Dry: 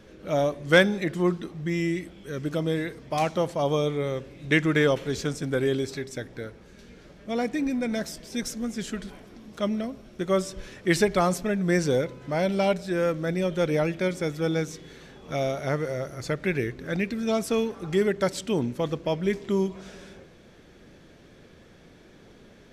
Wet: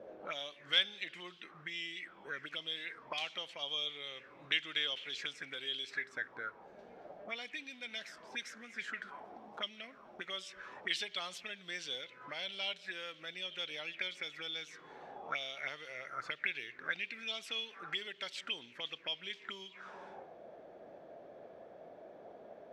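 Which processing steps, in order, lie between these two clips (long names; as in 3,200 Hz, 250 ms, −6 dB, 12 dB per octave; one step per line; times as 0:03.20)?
downward compressor 1.5 to 1, threshold −42 dBFS, peak gain reduction 10.5 dB
envelope filter 530–3,200 Hz, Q 5.3, up, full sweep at −30 dBFS
level +12 dB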